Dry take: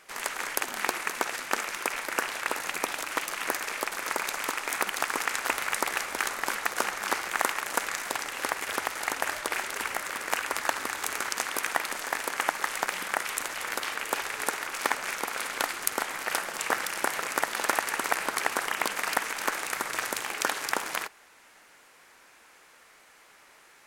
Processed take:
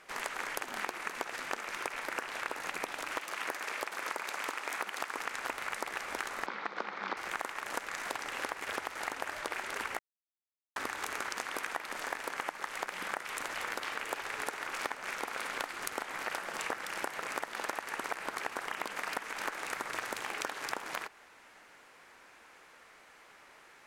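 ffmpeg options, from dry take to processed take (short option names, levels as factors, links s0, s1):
-filter_complex "[0:a]asettb=1/sr,asplit=3[s0][s1][s2];[s0]atrim=end=3.164[s3];[s1]atrim=start=3.16:end=5.19,asetpts=PTS-STARTPTS,afade=t=in:d=0.004:c=qsin,afade=t=out:st=2.026:d=0.004:c=qsin,highpass=f=250:p=1[s4];[s2]atrim=start=5.186[s5];[s3][s4]acrossfade=d=0.004:c1=hsin:c2=qsin[s6];[s6][s5]acrossfade=d=0.004:c1=qsin:c2=hsin,asettb=1/sr,asplit=3[s7][s8][s9];[s7]atrim=end=6.464[s10];[s8]atrim=start=6.46:end=7.17,asetpts=PTS-STARTPTS,afade=t=in:d=0.004:c=qsin,afade=t=out:st=0.706:d=0.004:c=qsin,highpass=f=160:w=0.5412,highpass=f=160:w=1.3066,equalizer=f=190:t=q:w=4:g=6,equalizer=f=670:t=q:w=4:g=-3,equalizer=f=1700:t=q:w=4:g=-4,equalizer=f=2800:t=q:w=4:g=-6,lowpass=f=4300:w=0.5412,lowpass=f=4300:w=1.3066[s11];[s9]atrim=start=7.166[s12];[s10][s11]acrossfade=d=0.004:c1=hsin:c2=qsin[s13];[s13][s12]acrossfade=d=0.004:c1=qsin:c2=hsin,asplit=3[s14][s15][s16];[s14]atrim=end=9.99,asetpts=PTS-STARTPTS,afade=t=out:st=9.986:d=0.004:c=hsin[s17];[s15]atrim=start=9.99:end=10.76,asetpts=PTS-STARTPTS,volume=0[s18];[s16]atrim=start=10.76,asetpts=PTS-STARTPTS,afade=t=in:d=0.004:c=hsin[s19];[s17][s18][s19]concat=n=3:v=0:a=1,aemphasis=mode=reproduction:type=cd,acompressor=threshold=0.0224:ratio=6"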